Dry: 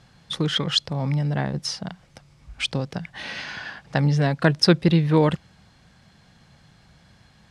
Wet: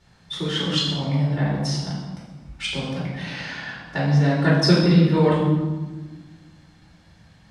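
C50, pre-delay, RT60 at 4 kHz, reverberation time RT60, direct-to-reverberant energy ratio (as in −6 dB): 0.5 dB, 3 ms, 0.85 s, 1.4 s, −8.0 dB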